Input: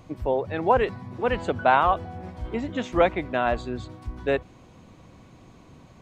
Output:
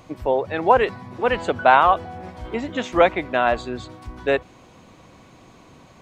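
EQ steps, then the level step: bass shelf 270 Hz -9 dB; +6.0 dB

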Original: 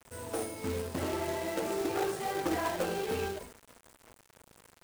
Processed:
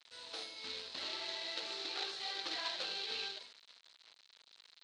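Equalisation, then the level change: band-pass filter 4.1 kHz, Q 5.5; distance through air 110 m; +16.0 dB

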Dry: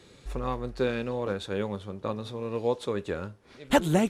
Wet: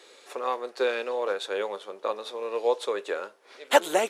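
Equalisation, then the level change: high-pass 430 Hz 24 dB/octave; +4.5 dB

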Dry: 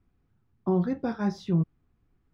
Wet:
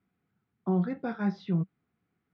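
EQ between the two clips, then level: cabinet simulation 140–4100 Hz, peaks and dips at 190 Hz +7 dB, 450 Hz +4 dB, 720 Hz +5 dB, 1.4 kHz +6 dB, 2.1 kHz +6 dB; tilt EQ +2.5 dB/octave; bass shelf 250 Hz +11 dB; -6.5 dB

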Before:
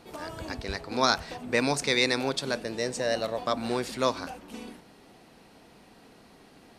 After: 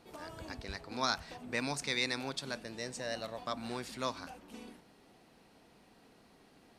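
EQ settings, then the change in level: dynamic bell 450 Hz, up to -6 dB, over -40 dBFS, Q 1.3; -8.0 dB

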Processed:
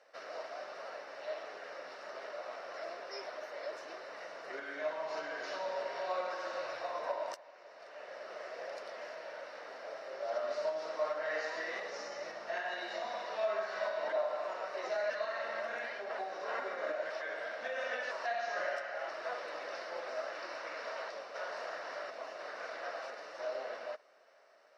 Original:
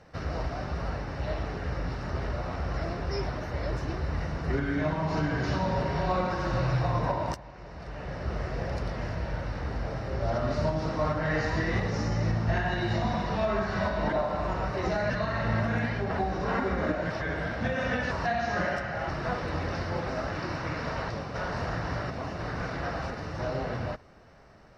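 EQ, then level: ladder high-pass 560 Hz, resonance 60%; peaking EQ 770 Hz -11 dB 0.92 oct; +4.5 dB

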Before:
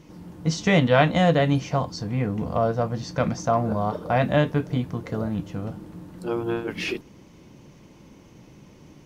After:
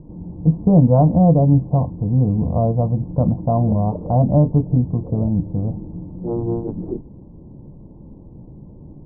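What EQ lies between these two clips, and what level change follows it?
steep low-pass 960 Hz 48 dB/octave; dynamic bell 430 Hz, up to -3 dB, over -34 dBFS, Q 2; tilt EQ -3.5 dB/octave; 0.0 dB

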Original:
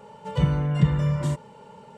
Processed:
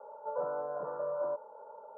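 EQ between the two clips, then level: ladder high-pass 520 Hz, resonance 60%; steep low-pass 1.5 kHz 96 dB/octave; distance through air 250 m; +5.0 dB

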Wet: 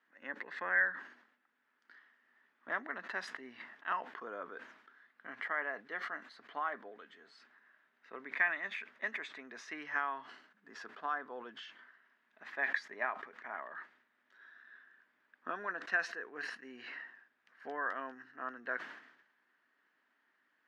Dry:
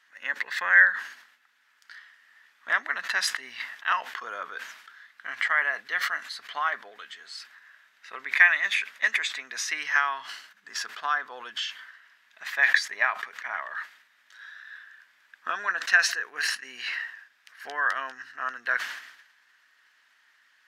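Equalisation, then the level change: band-pass filter 270 Hz, Q 1.3; +5.0 dB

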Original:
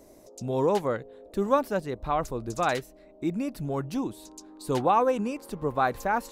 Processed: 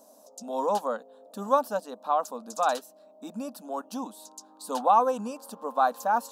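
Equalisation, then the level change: brick-wall FIR high-pass 200 Hz; static phaser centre 870 Hz, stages 4; +3.0 dB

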